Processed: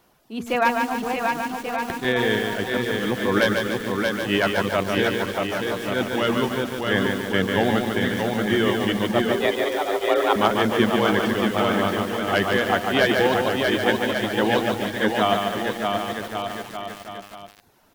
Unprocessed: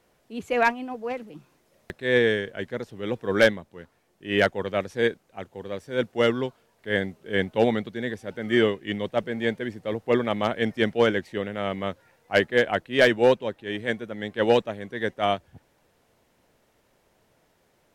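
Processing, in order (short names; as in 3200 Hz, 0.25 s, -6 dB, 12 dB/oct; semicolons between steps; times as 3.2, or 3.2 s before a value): in parallel at -1 dB: negative-ratio compressor -23 dBFS, ratio -0.5; on the sum: graphic EQ 500/2000/4000/8000 Hz -10/-9/-3/-8 dB; bouncing-ball echo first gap 0.63 s, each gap 0.8×, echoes 5; reverb removal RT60 0.51 s; low shelf 220 Hz -10.5 dB; 9.31–10.36 frequency shift +170 Hz; de-hum 236.8 Hz, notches 4; lo-fi delay 0.145 s, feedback 55%, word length 7-bit, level -4 dB; gain +6 dB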